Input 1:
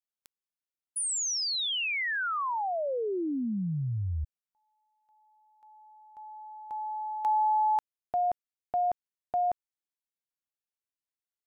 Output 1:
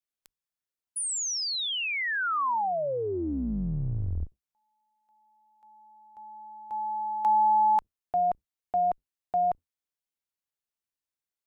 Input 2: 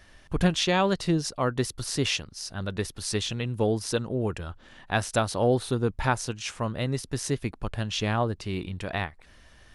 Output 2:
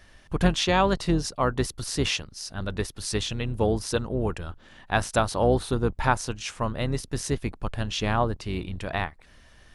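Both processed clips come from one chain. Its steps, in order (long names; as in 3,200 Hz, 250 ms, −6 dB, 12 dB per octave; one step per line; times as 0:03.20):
sub-octave generator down 2 octaves, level −4 dB
dynamic equaliser 1,000 Hz, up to +4 dB, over −39 dBFS, Q 1.1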